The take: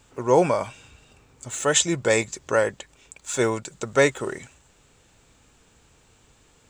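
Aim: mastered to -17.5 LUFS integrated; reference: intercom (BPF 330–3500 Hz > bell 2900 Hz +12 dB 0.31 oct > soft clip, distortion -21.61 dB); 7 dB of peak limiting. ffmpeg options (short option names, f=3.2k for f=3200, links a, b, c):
-af "alimiter=limit=-12.5dB:level=0:latency=1,highpass=330,lowpass=3.5k,equalizer=f=2.9k:t=o:w=0.31:g=12,asoftclip=threshold=-14dB,volume=10.5dB"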